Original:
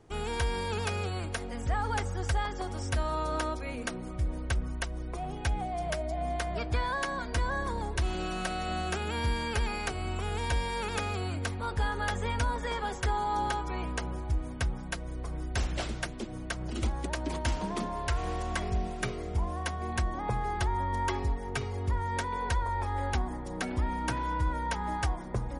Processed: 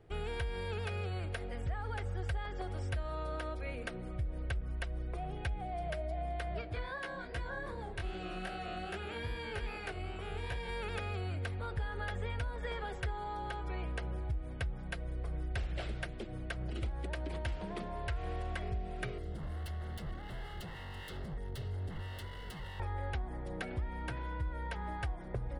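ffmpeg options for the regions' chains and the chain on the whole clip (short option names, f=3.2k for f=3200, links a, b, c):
-filter_complex "[0:a]asettb=1/sr,asplit=3[a][b][c];[a]atrim=end=6.614[d];[b]atrim=start=6.61:end=10.69,asetpts=PTS-STARTPTS,afade=t=in:d=0.004:c=qsin,afade=t=out:st=4.076:d=0.004:c=qsin,equalizer=f=63:t=o:w=0.89:g=-8.5,flanger=delay=15:depth=7.1:speed=2.5[e];[c]atrim=start=10.686[f];[d][e]acrossfade=d=0.004:c1=hsin:c2=qsin[g];[g][f]acrossfade=d=0.004:c1=qsin:c2=hsin,asettb=1/sr,asplit=3[h][i][j];[h]atrim=end=19.184[k];[i]atrim=start=19.18:end=22.8,asetpts=PTS-STARTPTS,afade=t=in:d=0.004:c=qsin,afade=t=out:st=3.616:d=0.004:c=qsin,aeval=exprs='0.0266*(abs(mod(val(0)/0.0266+3,4)-2)-1)':c=same,asuperstop=centerf=2400:order=12:qfactor=6.1,acrossover=split=290|3000[l][m][n];[m]acompressor=threshold=-52dB:ratio=2:attack=3.2:release=140:knee=2.83:detection=peak[o];[l][o][n]amix=inputs=3:normalize=0[p];[j]atrim=start=22.796[q];[k][p]acrossfade=d=0.004:c1=hsin:c2=qsin[r];[r][q]acrossfade=d=0.004:c1=qsin:c2=hsin,highshelf=f=5.2k:g=-10.5,acompressor=threshold=-32dB:ratio=6,equalizer=f=250:t=o:w=0.67:g=-10,equalizer=f=1k:t=o:w=0.67:g=-9,equalizer=f=6.3k:t=o:w=0.67:g=-11"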